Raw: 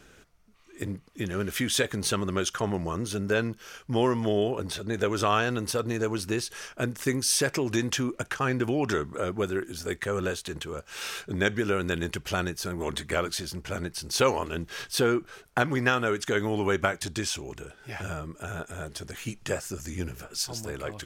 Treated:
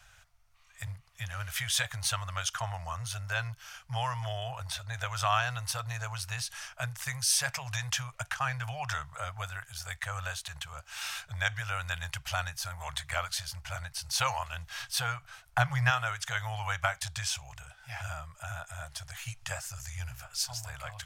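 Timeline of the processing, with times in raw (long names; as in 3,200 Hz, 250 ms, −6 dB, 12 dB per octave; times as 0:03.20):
0:15.47–0:15.90: low-shelf EQ 230 Hz +10.5 dB
whole clip: Chebyshev band-stop filter 120–710 Hz, order 3; level −1.5 dB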